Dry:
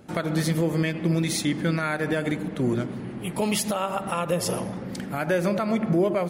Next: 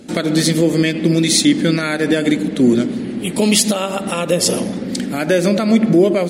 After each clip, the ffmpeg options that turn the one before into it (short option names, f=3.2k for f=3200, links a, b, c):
-af "equalizer=f=125:t=o:w=1:g=-5,equalizer=f=250:t=o:w=1:g=11,equalizer=f=500:t=o:w=1:g=4,equalizer=f=1k:t=o:w=1:g=-5,equalizer=f=2k:t=o:w=1:g=3,equalizer=f=4k:t=o:w=1:g=9,equalizer=f=8k:t=o:w=1:g=10,volume=4dB"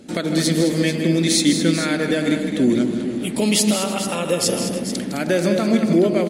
-af "aecho=1:1:159|211|310|438:0.316|0.316|0.112|0.299,volume=-4.5dB"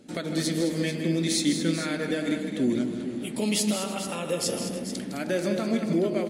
-af "flanger=delay=6.5:depth=7.2:regen=-68:speed=0.34:shape=triangular,volume=-4dB"